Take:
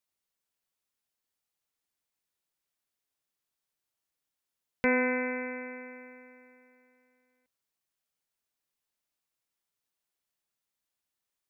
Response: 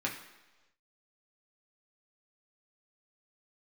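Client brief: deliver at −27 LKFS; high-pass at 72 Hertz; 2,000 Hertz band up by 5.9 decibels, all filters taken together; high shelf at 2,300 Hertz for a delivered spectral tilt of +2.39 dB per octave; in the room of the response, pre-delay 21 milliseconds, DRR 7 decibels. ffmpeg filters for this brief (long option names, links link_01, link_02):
-filter_complex "[0:a]highpass=72,equalizer=frequency=2000:width_type=o:gain=5,highshelf=frequency=2300:gain=4,asplit=2[link_01][link_02];[1:a]atrim=start_sample=2205,adelay=21[link_03];[link_02][link_03]afir=irnorm=-1:irlink=0,volume=-12.5dB[link_04];[link_01][link_04]amix=inputs=2:normalize=0,volume=-1.5dB"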